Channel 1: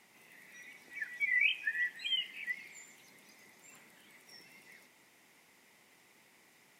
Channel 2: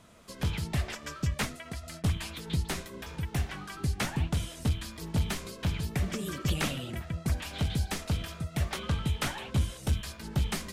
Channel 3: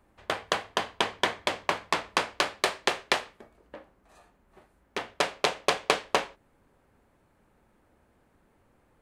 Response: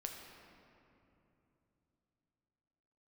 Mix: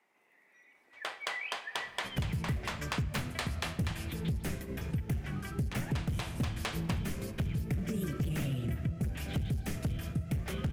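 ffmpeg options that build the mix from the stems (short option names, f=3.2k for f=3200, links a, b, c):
-filter_complex "[0:a]acrossover=split=280 2100:gain=0.2 1 0.224[a][b][c];[a][b][c]amix=inputs=3:normalize=0,volume=-8.5dB,asplit=2[d][e];[e]volume=-3dB[f];[1:a]asoftclip=type=hard:threshold=-29dB,agate=range=-9dB:threshold=-43dB:ratio=16:detection=peak,equalizer=f=125:t=o:w=1:g=7,equalizer=f=1k:t=o:w=1:g=-10,equalizer=f=4k:t=o:w=1:g=-10,equalizer=f=8k:t=o:w=1:g=-5,adelay=1750,volume=1dB,asplit=2[g][h];[h]volume=-5.5dB[i];[2:a]asoftclip=type=tanh:threshold=-17.5dB,highpass=f=1.1k:p=1,adelay=750,volume=-6.5dB,asplit=2[j][k];[k]volume=-5.5dB[l];[3:a]atrim=start_sample=2205[m];[f][i][l]amix=inputs=3:normalize=0[n];[n][m]afir=irnorm=-1:irlink=0[o];[d][g][j][o]amix=inputs=4:normalize=0,acompressor=threshold=-30dB:ratio=6"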